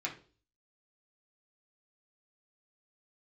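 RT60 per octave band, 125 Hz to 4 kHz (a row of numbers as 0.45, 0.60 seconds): 0.60, 0.50, 0.45, 0.35, 0.30, 0.40 seconds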